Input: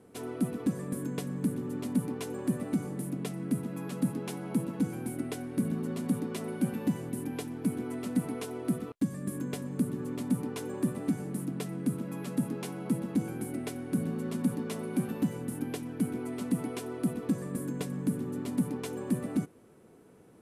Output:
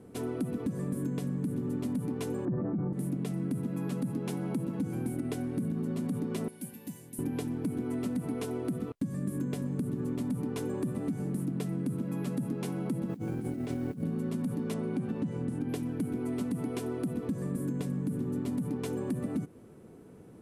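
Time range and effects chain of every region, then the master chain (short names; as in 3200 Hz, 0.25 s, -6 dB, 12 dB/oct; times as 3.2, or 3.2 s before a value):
2.45–2.93 LPF 1500 Hz 24 dB/oct + comb 5.8 ms, depth 53% + sustainer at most 22 dB/s
6.48–7.19 Butterworth band-stop 1300 Hz, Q 4.7 + pre-emphasis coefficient 0.9
13.09–14.03 negative-ratio compressor -40 dBFS + air absorption 56 m + modulation noise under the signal 27 dB
14.74–15.69 LPF 9800 Hz 24 dB/oct + high shelf 6000 Hz -8.5 dB
whole clip: low shelf 380 Hz +9 dB; limiter -18.5 dBFS; compressor, threshold -29 dBFS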